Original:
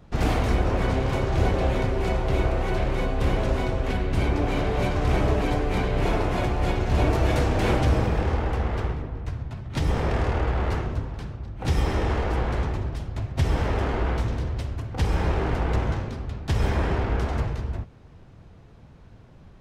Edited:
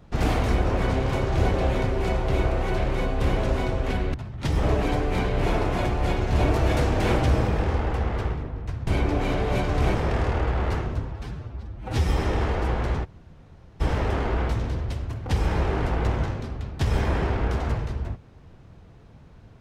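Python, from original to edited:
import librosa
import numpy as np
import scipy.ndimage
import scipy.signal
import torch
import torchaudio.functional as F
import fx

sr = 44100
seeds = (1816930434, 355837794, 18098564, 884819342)

y = fx.edit(x, sr, fx.swap(start_s=4.14, length_s=1.08, other_s=9.46, other_length_s=0.49),
    fx.stretch_span(start_s=11.12, length_s=0.63, factor=1.5),
    fx.room_tone_fill(start_s=12.73, length_s=0.76, crossfade_s=0.02), tone=tone)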